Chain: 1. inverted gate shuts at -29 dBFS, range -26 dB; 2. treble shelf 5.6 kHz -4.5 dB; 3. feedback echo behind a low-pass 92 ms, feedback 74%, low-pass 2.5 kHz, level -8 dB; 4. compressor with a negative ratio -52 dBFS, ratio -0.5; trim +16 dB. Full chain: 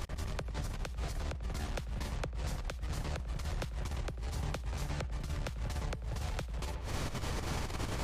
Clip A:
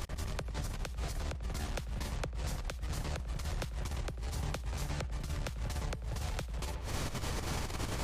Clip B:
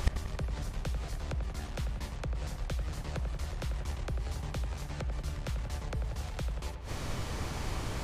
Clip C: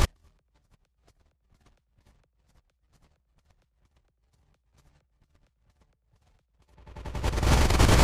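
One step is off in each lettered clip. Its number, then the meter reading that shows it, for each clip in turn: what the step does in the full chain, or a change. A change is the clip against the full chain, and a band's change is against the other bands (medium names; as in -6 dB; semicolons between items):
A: 2, 8 kHz band +3.0 dB; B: 4, crest factor change +10.0 dB; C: 1, momentary loudness spread change +16 LU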